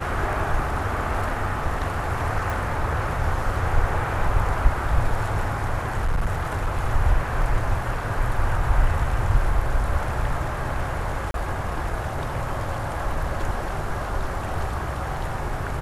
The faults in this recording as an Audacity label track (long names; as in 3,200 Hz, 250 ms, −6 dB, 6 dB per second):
2.500000	2.500000	click
5.970000	6.800000	clipping −18 dBFS
11.310000	11.340000	drop-out 32 ms